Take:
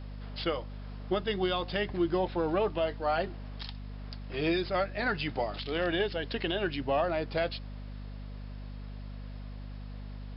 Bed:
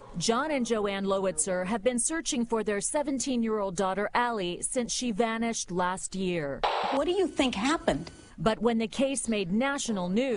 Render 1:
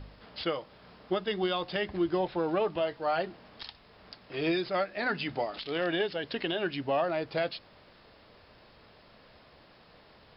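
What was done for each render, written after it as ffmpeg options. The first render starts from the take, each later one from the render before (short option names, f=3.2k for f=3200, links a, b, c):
-af "bandreject=f=50:t=h:w=4,bandreject=f=100:t=h:w=4,bandreject=f=150:t=h:w=4,bandreject=f=200:t=h:w=4,bandreject=f=250:t=h:w=4"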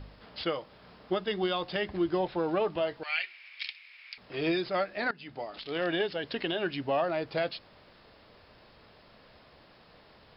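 -filter_complex "[0:a]asettb=1/sr,asplit=3[a][b][c];[a]atrim=end=3.034[d];[b]atrim=start=3.03:end=4.18,asetpts=PTS-STARTPTS,afade=t=in:d=0.004:c=qsin,afade=t=out:st=1.146:d=0.004:c=qsin,highpass=f=2.3k:t=q:w=8.9[e];[c]atrim=start=4.176[f];[d][e]acrossfade=d=0.004:c1=hsin:c2=qsin[g];[g][f]acrossfade=d=0.004:c1=qsin:c2=hsin,asplit=2[h][i];[h]atrim=end=5.11,asetpts=PTS-STARTPTS,afade=t=out:st=5.106:d=0.004:c=hsin:silence=0.105925[j];[i]atrim=start=5.11,asetpts=PTS-STARTPTS,afade=t=in:d=0.74:silence=0.105925[k];[j][k]concat=n=2:v=0:a=1"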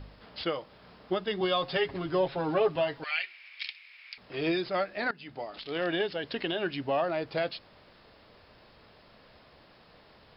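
-filter_complex "[0:a]asettb=1/sr,asplit=3[a][b][c];[a]atrim=end=1.404[d];[b]atrim=start=1.4:end=3.11,asetpts=PTS-STARTPTS,afade=t=in:d=0.004:c=qsin,afade=t=out:st=1.706:d=0.004:c=qsin,aecho=1:1:7.3:0.99,atrim=end_sample=75411[e];[c]atrim=start=3.106[f];[d][e]acrossfade=d=0.004:c1=hsin:c2=qsin[g];[g][f]acrossfade=d=0.004:c1=qsin:c2=hsin"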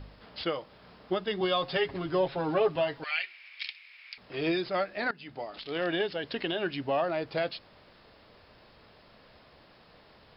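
-af anull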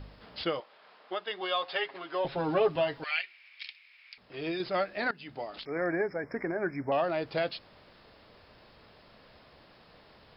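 -filter_complex "[0:a]asettb=1/sr,asplit=3[a][b][c];[a]atrim=end=0.604[d];[b]atrim=start=0.6:end=2.25,asetpts=PTS-STARTPTS,afade=t=in:d=0.004:c=qsin,afade=t=out:st=1.646:d=0.004:c=qsin,highpass=620,lowpass=4.1k[e];[c]atrim=start=2.246[f];[d][e]acrossfade=d=0.004:c1=hsin:c2=qsin[g];[g][f]acrossfade=d=0.004:c1=qsin:c2=hsin,asettb=1/sr,asplit=3[h][i][j];[h]atrim=end=5.654[k];[i]atrim=start=5.65:end=6.92,asetpts=PTS-STARTPTS,afade=t=in:d=0.004:c=qsin,afade=t=out:st=1.266:d=0.004:c=qsin,asuperstop=centerf=3500:order=20:qfactor=1.2[l];[j]atrim=start=6.916[m];[k][l]acrossfade=d=0.004:c1=hsin:c2=qsin[n];[n][m]acrossfade=d=0.004:c1=qsin:c2=hsin,asplit=3[o][p][q];[o]atrim=end=3.212[r];[p]atrim=start=3.208:end=4.602,asetpts=PTS-STARTPTS,volume=-5.5dB[s];[q]atrim=start=4.598[t];[r][s]acrossfade=d=0.004:c1=hsin:c2=hsin[u];[u][t]acrossfade=d=0.004:c1=hsin:c2=hsin"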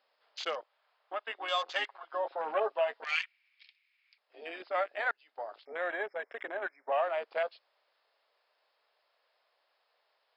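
-af "highpass=f=550:w=0.5412,highpass=f=550:w=1.3066,afwtdn=0.0112"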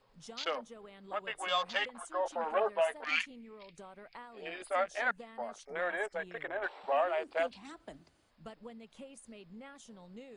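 -filter_complex "[1:a]volume=-23dB[a];[0:a][a]amix=inputs=2:normalize=0"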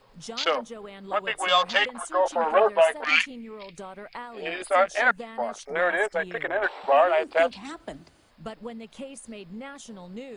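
-af "volume=11dB"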